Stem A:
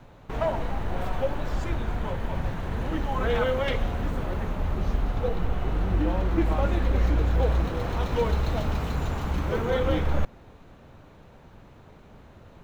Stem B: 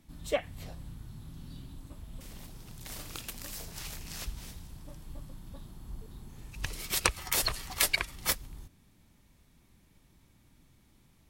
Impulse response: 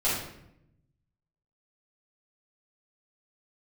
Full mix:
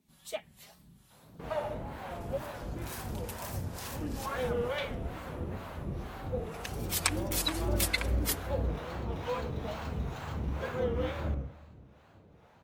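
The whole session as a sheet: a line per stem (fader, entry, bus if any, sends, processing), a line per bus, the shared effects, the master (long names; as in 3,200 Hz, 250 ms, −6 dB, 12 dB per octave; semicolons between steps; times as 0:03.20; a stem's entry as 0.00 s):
−7.5 dB, 1.10 s, send −13 dB, no processing
−5.5 dB, 0.00 s, no send, spectral tilt +1.5 dB per octave; comb filter 5 ms, depth 57%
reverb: on, RT60 0.80 s, pre-delay 4 ms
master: high-pass filter 70 Hz 12 dB per octave; two-band tremolo in antiphase 2.2 Hz, depth 70%, crossover 570 Hz; tape wow and flutter 130 cents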